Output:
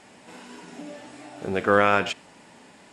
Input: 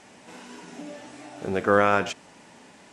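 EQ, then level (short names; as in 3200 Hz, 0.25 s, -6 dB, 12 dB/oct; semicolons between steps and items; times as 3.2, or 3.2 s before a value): notch 6000 Hz, Q 10; dynamic EQ 2800 Hz, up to +5 dB, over -40 dBFS, Q 1.1; 0.0 dB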